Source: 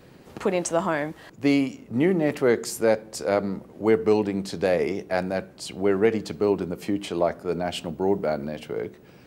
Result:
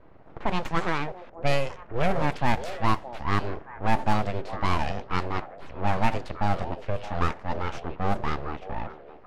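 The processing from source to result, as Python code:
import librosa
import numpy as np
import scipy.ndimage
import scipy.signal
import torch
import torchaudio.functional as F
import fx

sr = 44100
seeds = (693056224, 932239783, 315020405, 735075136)

y = np.abs(x)
y = fx.echo_stepped(y, sr, ms=620, hz=530.0, octaves=1.4, feedback_pct=70, wet_db=-8.0)
y = fx.env_lowpass(y, sr, base_hz=1300.0, full_db=-15.5)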